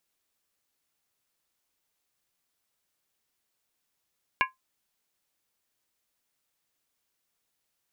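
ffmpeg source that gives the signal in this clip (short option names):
-f lavfi -i "aevalsrc='0.106*pow(10,-3*t/0.16)*sin(2*PI*1040*t)+0.0891*pow(10,-3*t/0.127)*sin(2*PI*1657.8*t)+0.075*pow(10,-3*t/0.109)*sin(2*PI*2221.4*t)+0.0631*pow(10,-3*t/0.106)*sin(2*PI*2387.8*t)+0.0531*pow(10,-3*t/0.098)*sin(2*PI*2759.1*t)':d=0.63:s=44100"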